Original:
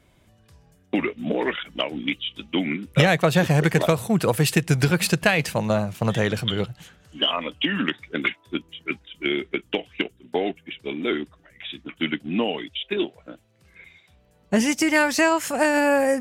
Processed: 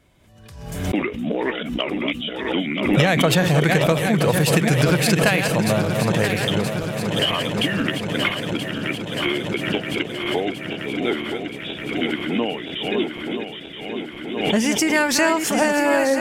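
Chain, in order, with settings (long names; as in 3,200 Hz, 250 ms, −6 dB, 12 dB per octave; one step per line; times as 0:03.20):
feedback delay that plays each chunk backwards 488 ms, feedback 82%, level −7.5 dB
background raised ahead of every attack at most 50 dB per second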